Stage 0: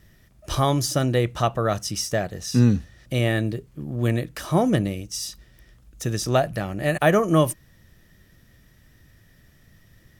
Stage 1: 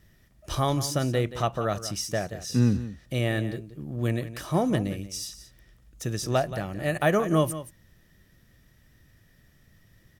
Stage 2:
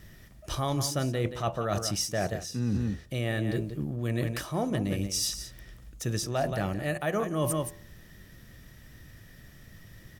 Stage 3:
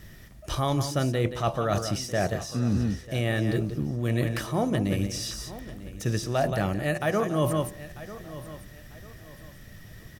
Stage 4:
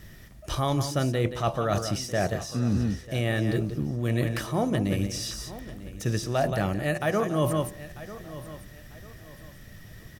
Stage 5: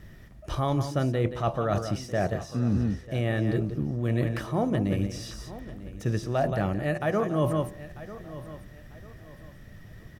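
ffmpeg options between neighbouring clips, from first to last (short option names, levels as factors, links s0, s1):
-af "aecho=1:1:177:0.211,volume=0.596"
-af "bandreject=f=83.64:t=h:w=4,bandreject=f=167.28:t=h:w=4,bandreject=f=250.92:t=h:w=4,bandreject=f=334.56:t=h:w=4,bandreject=f=418.2:t=h:w=4,bandreject=f=501.84:t=h:w=4,bandreject=f=585.48:t=h:w=4,bandreject=f=669.12:t=h:w=4,bandreject=f=752.76:t=h:w=4,bandreject=f=836.4:t=h:w=4,bandreject=f=920.04:t=h:w=4,bandreject=f=1003.68:t=h:w=4,bandreject=f=1087.32:t=h:w=4,areverse,acompressor=threshold=0.02:ratio=12,areverse,volume=2.66"
-filter_complex "[0:a]acrossover=split=3700[s0][s1];[s1]acompressor=threshold=0.0112:ratio=4:attack=1:release=60[s2];[s0][s2]amix=inputs=2:normalize=0,aecho=1:1:945|1890|2835:0.158|0.0507|0.0162,volume=1.5"
-af anull
-af "highshelf=f=3000:g=-11"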